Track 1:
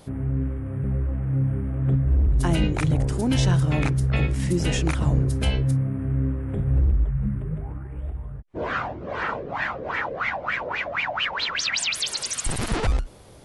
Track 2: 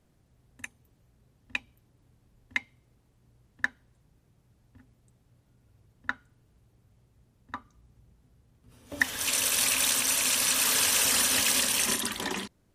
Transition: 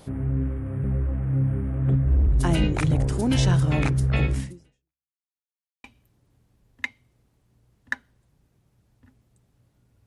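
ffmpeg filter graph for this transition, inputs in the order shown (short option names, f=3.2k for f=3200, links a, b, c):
-filter_complex "[0:a]apad=whole_dur=10.06,atrim=end=10.06,asplit=2[a][b];[a]atrim=end=5.13,asetpts=PTS-STARTPTS,afade=t=out:st=4.38:d=0.75:c=exp[c];[b]atrim=start=5.13:end=5.84,asetpts=PTS-STARTPTS,volume=0[d];[1:a]atrim=start=1.56:end=5.78,asetpts=PTS-STARTPTS,afade=t=in:d=0.004:c=hsin[e];[c][d][e]concat=n=3:v=0:a=1"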